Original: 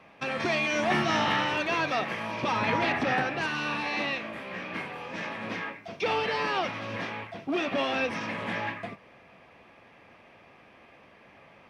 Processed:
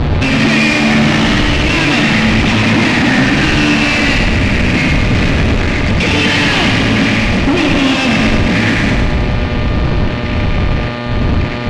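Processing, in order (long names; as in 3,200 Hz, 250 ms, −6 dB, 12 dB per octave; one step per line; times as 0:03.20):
wind on the microphone 100 Hz −39 dBFS
drawn EQ curve 290 Hz 0 dB, 410 Hz −19 dB, 1,300 Hz −22 dB, 1,900 Hz −7 dB
downward compressor, threshold −33 dBFS, peak gain reduction 12.5 dB
fuzz pedal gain 54 dB, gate −54 dBFS
hum with harmonics 120 Hz, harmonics 38, −26 dBFS −4 dB per octave
soft clipping −14.5 dBFS, distortion −17 dB
high-frequency loss of the air 120 metres
on a send: feedback echo with a high-pass in the loop 105 ms, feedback 64%, high-pass 200 Hz, level −4 dB
on the sum: level +6 dB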